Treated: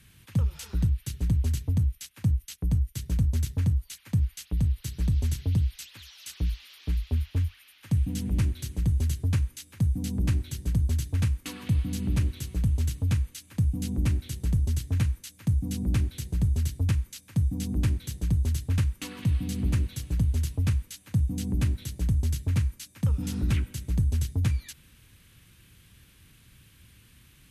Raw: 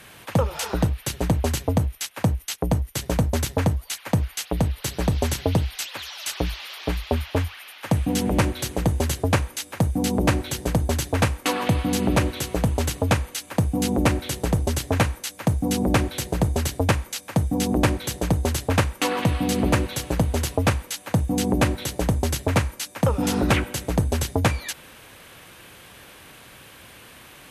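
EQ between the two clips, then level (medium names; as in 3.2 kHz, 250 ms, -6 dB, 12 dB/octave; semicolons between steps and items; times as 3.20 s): amplifier tone stack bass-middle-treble 6-0-2; bass shelf 270 Hz +10 dB; +3.5 dB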